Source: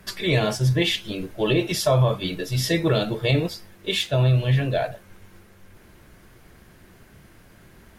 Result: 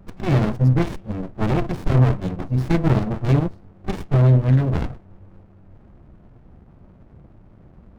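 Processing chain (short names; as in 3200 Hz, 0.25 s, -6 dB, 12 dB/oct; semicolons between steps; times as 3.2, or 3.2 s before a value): Wiener smoothing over 25 samples; resonant high shelf 2300 Hz -8.5 dB, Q 1.5; running maximum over 65 samples; gain +5.5 dB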